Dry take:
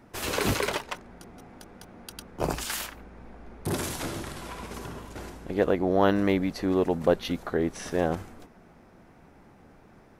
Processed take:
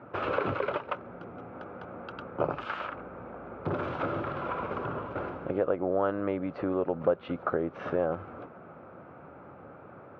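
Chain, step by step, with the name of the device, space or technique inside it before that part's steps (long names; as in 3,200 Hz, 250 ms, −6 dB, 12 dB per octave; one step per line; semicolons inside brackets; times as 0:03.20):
0:00.59–0:01.55: parametric band 1,100 Hz −3 dB 2.1 octaves
bass amplifier (downward compressor 4 to 1, threshold −34 dBFS, peak gain reduction 15 dB; loudspeaker in its box 88–2,400 Hz, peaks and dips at 210 Hz −6 dB, 550 Hz +8 dB, 1,300 Hz +10 dB, 1,900 Hz −9 dB)
level +5 dB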